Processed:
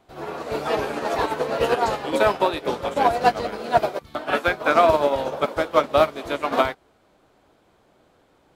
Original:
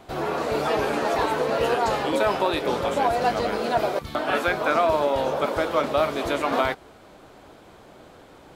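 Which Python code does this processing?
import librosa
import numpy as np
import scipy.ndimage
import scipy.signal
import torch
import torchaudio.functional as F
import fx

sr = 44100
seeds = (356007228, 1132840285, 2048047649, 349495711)

y = fx.upward_expand(x, sr, threshold_db=-30.0, expansion=2.5)
y = y * 10.0 ** (6.5 / 20.0)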